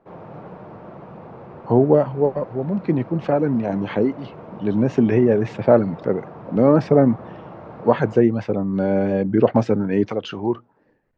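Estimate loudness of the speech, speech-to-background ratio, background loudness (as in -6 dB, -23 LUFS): -20.0 LUFS, 19.0 dB, -39.0 LUFS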